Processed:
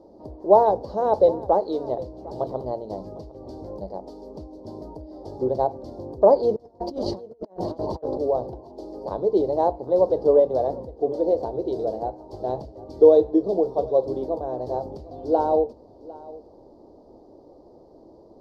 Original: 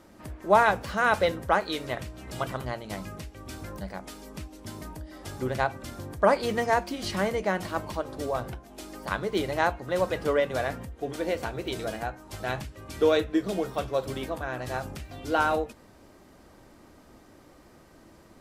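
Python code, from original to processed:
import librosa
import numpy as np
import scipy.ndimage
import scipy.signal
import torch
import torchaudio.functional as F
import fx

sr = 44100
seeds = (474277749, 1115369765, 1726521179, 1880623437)

y = fx.curve_eq(x, sr, hz=(190.0, 440.0, 920.0, 1400.0, 2500.0, 4600.0, 8000.0), db=(0, 13, 5, -21, -29, -3, -22))
y = fx.over_compress(y, sr, threshold_db=-31.0, ratio=-0.5, at=(6.56, 8.2))
y = y + 10.0 ** (-20.0 / 20.0) * np.pad(y, (int(754 * sr / 1000.0), 0))[:len(y)]
y = y * 10.0 ** (-2.5 / 20.0)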